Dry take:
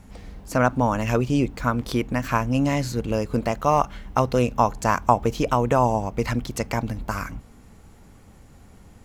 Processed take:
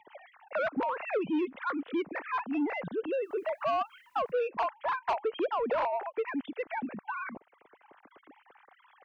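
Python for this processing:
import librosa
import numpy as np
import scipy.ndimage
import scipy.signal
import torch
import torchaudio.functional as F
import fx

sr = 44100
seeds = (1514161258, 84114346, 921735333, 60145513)

y = fx.sine_speech(x, sr)
y = fx.highpass(y, sr, hz=fx.line((2.12, 670.0), (2.53, 250.0)), slope=12, at=(2.12, 2.53), fade=0.02)
y = fx.quant_dither(y, sr, seeds[0], bits=12, dither='triangular', at=(3.21, 4.31), fade=0.02)
y = 10.0 ** (-15.5 / 20.0) * np.tanh(y / 10.0 ** (-15.5 / 20.0))
y = fx.band_squash(y, sr, depth_pct=40)
y = y * librosa.db_to_amplitude(-7.5)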